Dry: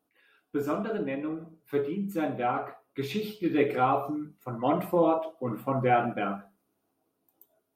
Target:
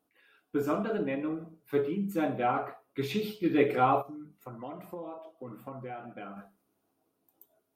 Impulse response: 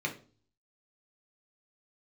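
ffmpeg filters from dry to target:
-filter_complex "[0:a]asplit=3[a][b][c];[a]afade=t=out:st=4.01:d=0.02[d];[b]acompressor=threshold=-42dB:ratio=4,afade=t=in:st=4.01:d=0.02,afade=t=out:st=6.36:d=0.02[e];[c]afade=t=in:st=6.36:d=0.02[f];[d][e][f]amix=inputs=3:normalize=0"

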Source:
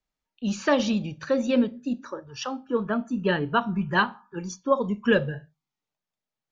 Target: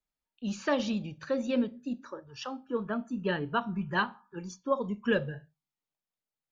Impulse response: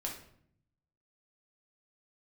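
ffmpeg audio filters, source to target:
-af "bandreject=f=5.8k:w=28,volume=-6.5dB"

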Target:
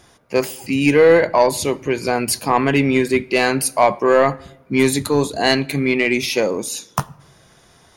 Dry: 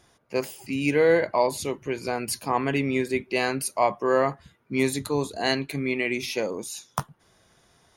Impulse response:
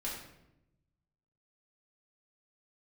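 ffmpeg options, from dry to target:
-filter_complex "[0:a]asoftclip=type=tanh:threshold=-13dB,asplit=2[a][b];[1:a]atrim=start_sample=2205[c];[b][c]afir=irnorm=-1:irlink=0,volume=-19.5dB[d];[a][d]amix=inputs=2:normalize=0,volume=9dB"

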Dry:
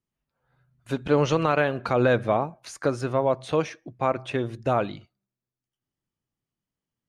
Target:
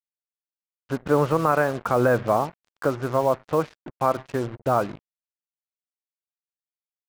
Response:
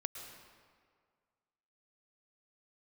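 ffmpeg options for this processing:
-af "lowpass=f=1.3k:t=q:w=1.5,acrusher=bits=5:mix=0:aa=0.5"

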